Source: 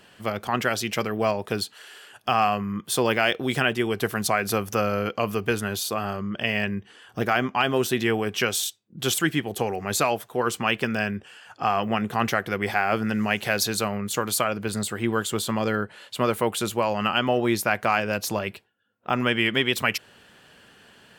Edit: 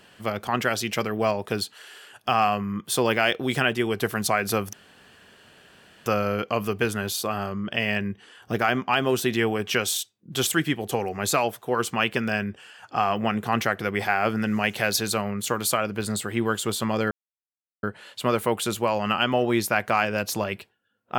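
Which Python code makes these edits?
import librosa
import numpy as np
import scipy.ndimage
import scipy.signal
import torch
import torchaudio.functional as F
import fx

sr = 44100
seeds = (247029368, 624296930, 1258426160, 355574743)

y = fx.edit(x, sr, fx.insert_room_tone(at_s=4.73, length_s=1.33),
    fx.insert_silence(at_s=15.78, length_s=0.72), tone=tone)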